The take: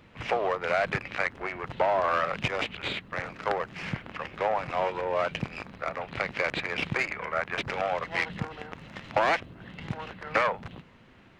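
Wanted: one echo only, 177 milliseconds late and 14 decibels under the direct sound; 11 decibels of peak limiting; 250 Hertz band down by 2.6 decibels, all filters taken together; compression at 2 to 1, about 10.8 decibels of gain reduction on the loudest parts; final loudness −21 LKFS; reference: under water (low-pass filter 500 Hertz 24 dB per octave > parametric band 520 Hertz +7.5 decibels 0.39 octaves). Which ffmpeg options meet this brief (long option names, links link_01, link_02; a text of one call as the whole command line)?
ffmpeg -i in.wav -af "equalizer=frequency=250:width_type=o:gain=-4.5,acompressor=threshold=-42dB:ratio=2,alimiter=level_in=6.5dB:limit=-24dB:level=0:latency=1,volume=-6.5dB,lowpass=frequency=500:width=0.5412,lowpass=frequency=500:width=1.3066,equalizer=frequency=520:width_type=o:width=0.39:gain=7.5,aecho=1:1:177:0.2,volume=26.5dB" out.wav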